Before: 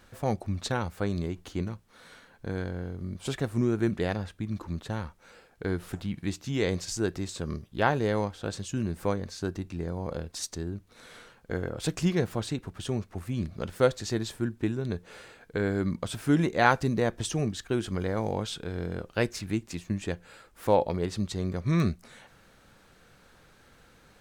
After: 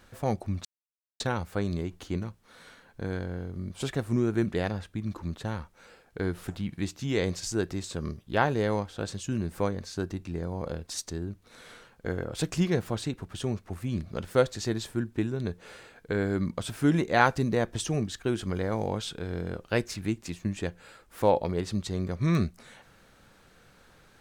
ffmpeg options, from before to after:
ffmpeg -i in.wav -filter_complex "[0:a]asplit=2[link_01][link_02];[link_01]atrim=end=0.65,asetpts=PTS-STARTPTS,afade=type=out:start_time=0.646:duration=0.004:curve=hsin,apad=pad_dur=0.55[link_03];[link_02]atrim=start=0.65,asetpts=PTS-STARTPTS,afade=type=in:duration=0.004:curve=hsin[link_04];[link_03][link_04]concat=n=2:v=0:a=1" out.wav

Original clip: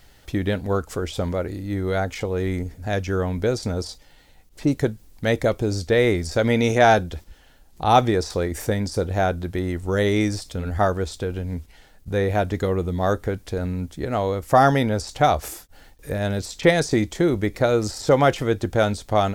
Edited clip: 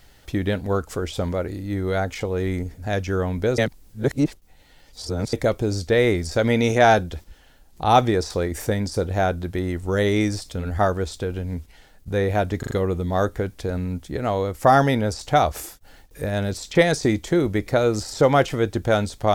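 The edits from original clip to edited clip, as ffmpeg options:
ffmpeg -i in.wav -filter_complex "[0:a]asplit=6[link_01][link_02][link_03][link_04][link_05][link_06];[link_01]atrim=end=3.582[link_07];[link_02]atrim=start=3.578:end=5.332,asetpts=PTS-STARTPTS,areverse[link_08];[link_03]atrim=start=5.328:end=12.632[link_09];[link_04]atrim=start=12.588:end=12.632[link_10];[link_05]atrim=start=12.588:end=12.632[link_11];[link_06]atrim=start=12.588[link_12];[link_07][link_08]acrossfade=duration=0.004:curve1=hsin:curve2=hsin[link_13];[link_13][link_09]acrossfade=duration=0.004:curve1=hsin:curve2=hsin[link_14];[link_14][link_10]acrossfade=duration=0.004:curve1=hsin:curve2=hsin[link_15];[link_15][link_11]acrossfade=duration=0.004:curve1=hsin:curve2=hsin[link_16];[link_16][link_12]acrossfade=duration=0.004:curve1=hsin:curve2=hsin" out.wav

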